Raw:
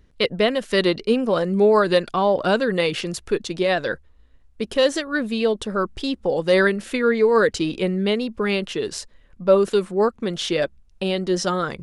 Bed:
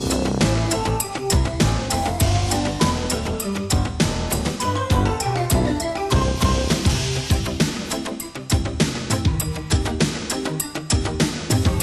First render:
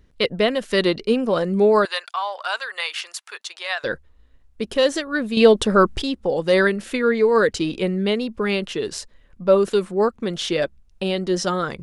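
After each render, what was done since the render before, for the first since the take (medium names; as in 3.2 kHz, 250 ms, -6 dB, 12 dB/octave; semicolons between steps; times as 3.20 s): 1.85–3.84 s: high-pass 880 Hz 24 dB/octave; 5.37–6.02 s: gain +8 dB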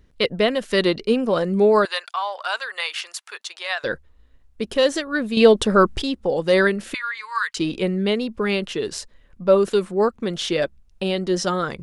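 6.94–7.57 s: elliptic high-pass 1 kHz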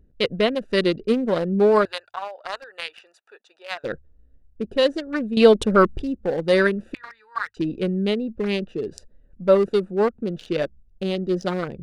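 local Wiener filter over 41 samples; hum notches 50/100 Hz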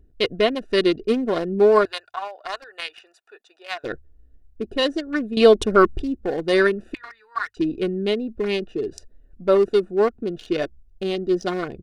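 dynamic bell 5.7 kHz, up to +4 dB, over -56 dBFS, Q 7.1; comb 2.8 ms, depth 45%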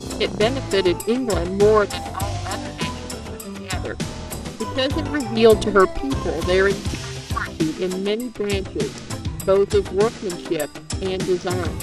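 add bed -8 dB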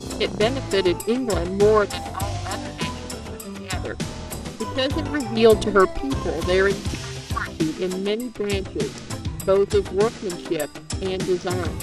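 trim -1.5 dB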